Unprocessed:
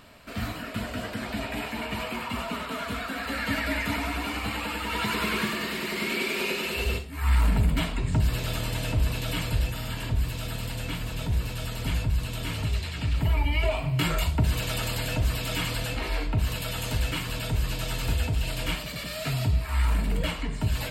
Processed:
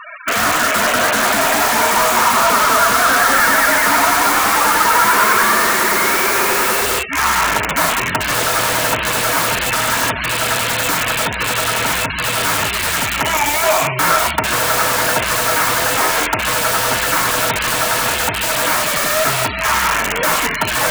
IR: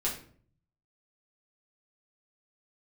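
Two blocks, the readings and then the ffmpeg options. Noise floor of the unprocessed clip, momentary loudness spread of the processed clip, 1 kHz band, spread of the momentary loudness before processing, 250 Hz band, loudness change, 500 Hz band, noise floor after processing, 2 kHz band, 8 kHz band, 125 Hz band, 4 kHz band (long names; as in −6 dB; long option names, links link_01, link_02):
−36 dBFS, 5 LU, +21.5 dB, 7 LU, +6.5 dB, +14.5 dB, +15.5 dB, −22 dBFS, +17.5 dB, +22.0 dB, −2.5 dB, +14.0 dB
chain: -filter_complex "[0:a]apsyclip=29.5dB,bandpass=frequency=1700:width_type=q:width=1.1:csg=0,afftfilt=real='re*gte(hypot(re,im),0.112)':imag='im*gte(hypot(re,im),0.112)':win_size=1024:overlap=0.75,acrossover=split=1600[link_01][link_02];[link_02]aeval=exprs='(mod(5.62*val(0)+1,2)-1)/5.62':channel_layout=same[link_03];[link_01][link_03]amix=inputs=2:normalize=0"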